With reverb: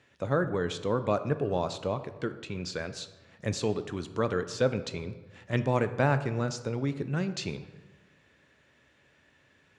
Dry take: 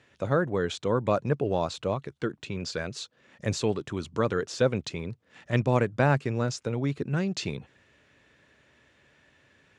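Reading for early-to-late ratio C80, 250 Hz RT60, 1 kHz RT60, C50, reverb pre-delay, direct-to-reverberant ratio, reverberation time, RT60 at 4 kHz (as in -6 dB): 14.5 dB, 1.4 s, 1.3 s, 12.5 dB, 4 ms, 10.0 dB, 1.3 s, 0.80 s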